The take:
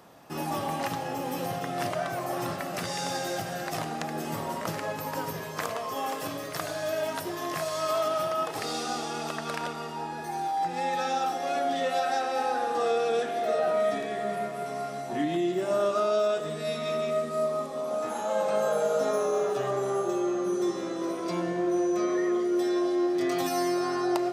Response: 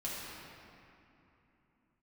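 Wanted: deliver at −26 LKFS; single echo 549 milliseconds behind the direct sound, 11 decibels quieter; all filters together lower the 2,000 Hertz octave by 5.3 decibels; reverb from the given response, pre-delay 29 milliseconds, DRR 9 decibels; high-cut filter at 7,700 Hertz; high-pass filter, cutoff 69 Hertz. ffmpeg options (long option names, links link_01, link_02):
-filter_complex "[0:a]highpass=69,lowpass=7700,equalizer=frequency=2000:width_type=o:gain=-7,aecho=1:1:549:0.282,asplit=2[link_01][link_02];[1:a]atrim=start_sample=2205,adelay=29[link_03];[link_02][link_03]afir=irnorm=-1:irlink=0,volume=-12dB[link_04];[link_01][link_04]amix=inputs=2:normalize=0,volume=3dB"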